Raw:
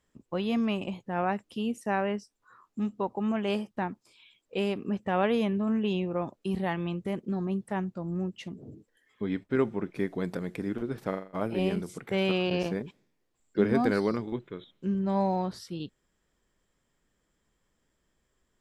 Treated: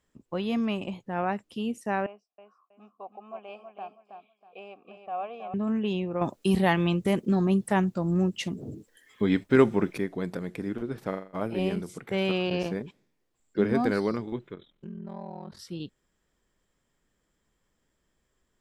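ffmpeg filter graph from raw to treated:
-filter_complex "[0:a]asettb=1/sr,asplit=3[a][b][c];[a]atrim=end=2.064[d];[b]atrim=start=2.06:end=5.54,asetpts=PTS-STARTPTS,afade=t=in:d=0.004:c=qsin,afade=t=out:st=3.476:d=0.004:c=qsin,asplit=3[e][f][g];[e]bandpass=f=730:t=q:w=8,volume=0dB[h];[f]bandpass=f=1.09k:t=q:w=8,volume=-6dB[i];[g]bandpass=f=2.44k:t=q:w=8,volume=-9dB[j];[h][i][j]amix=inputs=3:normalize=0,aecho=1:1:321|642|963:0.447|0.125|0.035,atrim=end_sample=153468[k];[c]atrim=start=5.536[l];[d][k]acrossfade=d=0.004:c1=hsin:c2=qsin[m];[m][l]acrossfade=d=0.004:c1=qsin:c2=hsin,asettb=1/sr,asplit=3[n][o][p];[n]atrim=end=6.214[q];[o]atrim=start=6.21:end=9.98,asetpts=PTS-STARTPTS,afade=t=in:d=0.004:c=qsin,afade=t=out:st=3.766:d=0.004:c=qsin,acontrast=85,highshelf=f=3.8k:g=8.5[r];[p]atrim=start=9.976[s];[q][r]acrossfade=d=0.004:c1=hsin:c2=qsin[t];[t][s]acrossfade=d=0.004:c1=qsin:c2=hsin,asettb=1/sr,asplit=3[u][v][w];[u]atrim=end=14.544[x];[v]atrim=start=14.54:end=15.59,asetpts=PTS-STARTPTS,afade=t=in:d=0.004:c=qsin,afade=t=out:st=1.046:d=0.004:c=qsin,acompressor=threshold=-38dB:ratio=3:attack=3.2:release=140:knee=1:detection=peak,aeval=exprs='val(0)*sin(2*PI*21*n/s)':c=same,bass=f=250:g=1,treble=f=4k:g=-7[y];[w]atrim=start=15.586[z];[x][y]acrossfade=d=0.004:c1=hsin:c2=qsin[aa];[aa][z]acrossfade=d=0.004:c1=qsin:c2=hsin"

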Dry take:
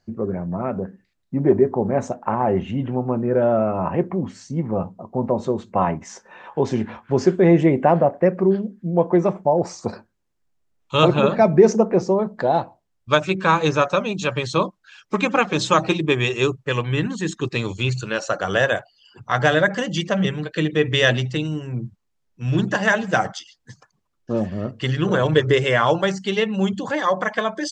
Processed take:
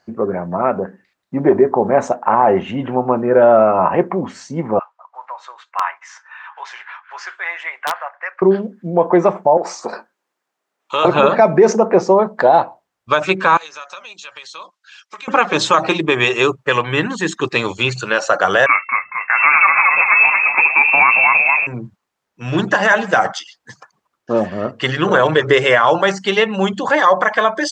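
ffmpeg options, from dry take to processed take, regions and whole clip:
-filter_complex "[0:a]asettb=1/sr,asplit=3[a][b][c];[a]atrim=end=4.794[d];[b]atrim=start=4.79:end=8.42,asetpts=PTS-STARTPTS,afade=t=in:d=0.004:c=qsin,afade=t=out:st=3.626:d=0.004:c=qsin,highpass=f=1.3k:w=0.5412,highpass=f=1.3k:w=1.3066,aemphasis=mode=reproduction:type=75fm,aeval=exprs='(mod(10*val(0)+1,2)-1)/10':c=same[e];[c]atrim=start=8.416[f];[d][e]acrossfade=d=0.004:c1=hsin:c2=qsin[g];[g][f]acrossfade=d=0.004:c1=qsin:c2=hsin,asettb=1/sr,asplit=3[h][i][j];[h]atrim=end=9.574[k];[i]atrim=start=9.57:end=11.05,asetpts=PTS-STARTPTS,afade=t=in:d=0.004:c=qsin,afade=t=out:st=1.476:d=0.004:c=qsin,acompressor=threshold=-24dB:ratio=3:attack=3.2:release=140:knee=1:detection=peak,highpass=270,asplit=2[l][m];[m]adelay=22,volume=-13.5dB[n];[l][n]amix=inputs=2:normalize=0,atrim=end_sample=65268[o];[j]atrim=start=11.046[p];[k][o]acrossfade=d=0.004:c1=hsin:c2=qsin[q];[q][p]acrossfade=d=0.004:c1=qsin:c2=hsin,asettb=1/sr,asplit=3[r][s][t];[r]atrim=end=13.574[u];[s]atrim=start=13.57:end=15.28,asetpts=PTS-STARTPTS,afade=t=in:d=0.004:c=qsin,afade=t=out:st=1.706:d=0.004:c=qsin,bandpass=f=5.5k:t=q:w=0.76,acompressor=threshold=-41dB:ratio=4:attack=3.2:release=140:knee=1:detection=peak[v];[t]atrim=start=15.276[w];[u][v]acrossfade=d=0.004:c1=hsin:c2=qsin[x];[x][w]acrossfade=d=0.004:c1=qsin:c2=hsin,asettb=1/sr,asplit=3[y][z][aa];[y]atrim=end=18.664[ab];[z]atrim=start=18.66:end=21.67,asetpts=PTS-STARTPTS,afade=t=in:d=0.004:c=qsin,afade=t=out:st=3.006:d=0.004:c=qsin,bandreject=f=50:t=h:w=6,bandreject=f=100:t=h:w=6,bandreject=f=150:t=h:w=6,asplit=7[ac][ad][ae][af][ag][ah][ai];[ad]adelay=227,afreqshift=58,volume=-7dB[aj];[ae]adelay=454,afreqshift=116,volume=-12.5dB[ak];[af]adelay=681,afreqshift=174,volume=-18dB[al];[ag]adelay=908,afreqshift=232,volume=-23.5dB[am];[ah]adelay=1135,afreqshift=290,volume=-29.1dB[an];[ai]adelay=1362,afreqshift=348,volume=-34.6dB[ao];[ac][aj][ak][al][am][an][ao]amix=inputs=7:normalize=0,atrim=end_sample=132741,lowpass=f=2.4k:t=q:w=0.5098,lowpass=f=2.4k:t=q:w=0.6013,lowpass=f=2.4k:t=q:w=0.9,lowpass=f=2.4k:t=q:w=2.563,afreqshift=-2800[ap];[aa]atrim=start=21.666[aq];[ab][ap]acrossfade=d=0.004:c1=hsin:c2=qsin[ar];[ar][aq]acrossfade=d=0.004:c1=qsin:c2=hsin,highpass=f=280:p=1,equalizer=f=1.1k:w=0.51:g=8.5,alimiter=level_in=5.5dB:limit=-1dB:release=50:level=0:latency=1,volume=-1dB"

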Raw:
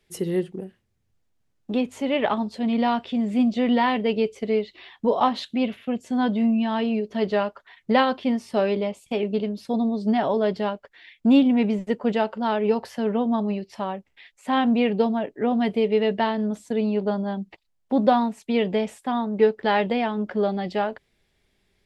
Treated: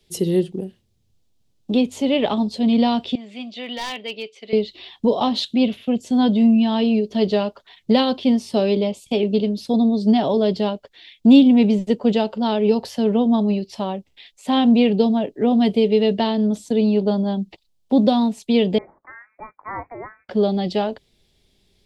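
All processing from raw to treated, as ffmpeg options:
-filter_complex "[0:a]asettb=1/sr,asplit=3[a][b][c];[a]atrim=end=3.154[d];[b]atrim=start=3.15:end=4.53,asetpts=PTS-STARTPTS,afade=t=in:d=0.004:c=qsin,afade=t=out:st=1.376:d=0.004:c=qsin,bandpass=f=2.1k:t=q:w=1.2,asoftclip=type=hard:threshold=-24.5dB[e];[c]atrim=start=4.526[f];[d][e]acrossfade=d=0.004:c1=hsin:c2=qsin[g];[g][f]acrossfade=d=0.004:c1=qsin:c2=hsin,asettb=1/sr,asplit=3[h][i][j];[h]atrim=end=18.784[k];[i]atrim=start=18.78:end=20.29,asetpts=PTS-STARTPTS,afade=t=in:d=0.004:c=qsin,afade=t=out:st=1.506:d=0.004:c=qsin,highpass=f=1.3k:w=0.5412,highpass=f=1.3k:w=1.3066,lowpass=f=2.4k:t=q:w=0.5098,lowpass=f=2.4k:t=q:w=0.6013,lowpass=f=2.4k:t=q:w=0.9,lowpass=f=2.4k:t=q:w=2.563,afreqshift=-2800[l];[j]atrim=start=20.286[m];[k][l]acrossfade=d=0.004:c1=hsin:c2=qsin[n];[n][m]acrossfade=d=0.004:c1=qsin:c2=hsin,tiltshelf=f=1.3k:g=7,acrossover=split=360|3000[o][p][q];[p]acompressor=threshold=-17dB:ratio=6[r];[o][r][q]amix=inputs=3:normalize=0,highshelf=f=2.5k:t=q:w=1.5:g=13"

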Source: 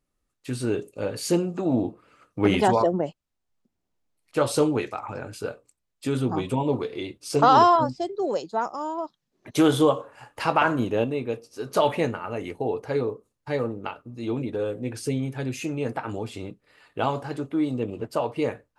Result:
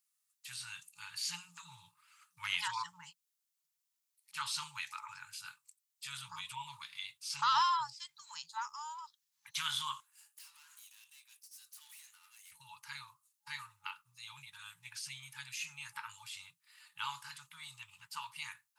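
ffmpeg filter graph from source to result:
-filter_complex "[0:a]asettb=1/sr,asplit=3[a][b][c];[a]atrim=end=10.004[d];[b]atrim=start=10:end=12.52,asetpts=PTS-STARTPTS,afade=t=in:d=0.004:c=qsin,afade=t=out:st=2.516:d=0.004:c=qsin,aderivative,acompressor=threshold=-42dB:ratio=10:attack=3.2:release=140:knee=1:detection=peak,aeval=exprs='(tanh(398*val(0)+0.65)-tanh(0.65))/398':c=same[e];[c]atrim=start=12.516[f];[d][e]acrossfade=d=0.004:c1=hsin:c2=qsin[g];[g][f]acrossfade=d=0.004:c1=qsin:c2=hsin,acrossover=split=5000[h][i];[i]acompressor=threshold=-56dB:ratio=4:attack=1:release=60[j];[h][j]amix=inputs=2:normalize=0,afftfilt=real='re*(1-between(b*sr/4096,180,850))':imag='im*(1-between(b*sr/4096,180,850))':win_size=4096:overlap=0.75,aderivative,volume=5dB"

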